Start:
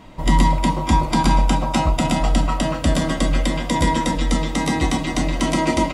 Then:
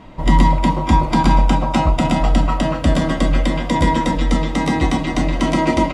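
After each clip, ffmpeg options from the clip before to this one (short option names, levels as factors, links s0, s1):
-af "lowpass=f=3000:p=1,volume=1.41"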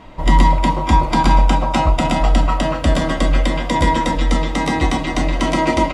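-af "equalizer=f=180:t=o:w=1.8:g=-5.5,volume=1.26"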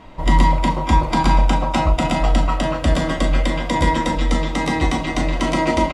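-filter_complex "[0:a]asplit=2[s0][s1];[s1]adelay=38,volume=0.266[s2];[s0][s2]amix=inputs=2:normalize=0,volume=0.794"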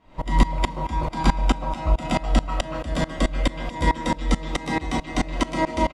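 -af "aeval=exprs='val(0)*pow(10,-21*if(lt(mod(-4.6*n/s,1),2*abs(-4.6)/1000),1-mod(-4.6*n/s,1)/(2*abs(-4.6)/1000),(mod(-4.6*n/s,1)-2*abs(-4.6)/1000)/(1-2*abs(-4.6)/1000))/20)':c=same,volume=1.12"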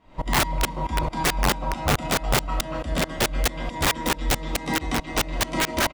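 -af "aeval=exprs='(mod(5.31*val(0)+1,2)-1)/5.31':c=same"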